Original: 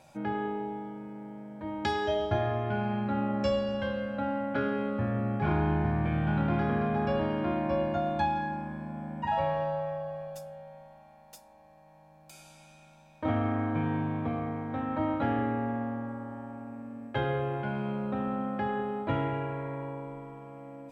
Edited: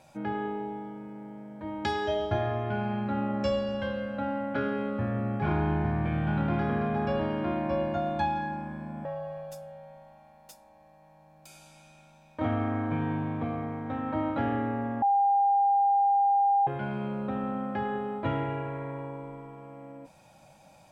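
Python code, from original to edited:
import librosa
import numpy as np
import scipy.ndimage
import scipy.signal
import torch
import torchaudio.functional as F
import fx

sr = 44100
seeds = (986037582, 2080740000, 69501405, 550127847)

y = fx.edit(x, sr, fx.cut(start_s=9.05, length_s=0.84),
    fx.bleep(start_s=15.86, length_s=1.65, hz=801.0, db=-20.0), tone=tone)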